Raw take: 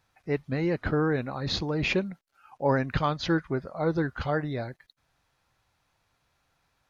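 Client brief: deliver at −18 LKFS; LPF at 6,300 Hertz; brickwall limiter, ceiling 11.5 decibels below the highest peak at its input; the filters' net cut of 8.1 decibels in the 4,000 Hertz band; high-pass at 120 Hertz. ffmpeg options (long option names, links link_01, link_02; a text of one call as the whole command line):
ffmpeg -i in.wav -af "highpass=120,lowpass=6300,equalizer=frequency=4000:width_type=o:gain=-9,volume=16dB,alimiter=limit=-6.5dB:level=0:latency=1" out.wav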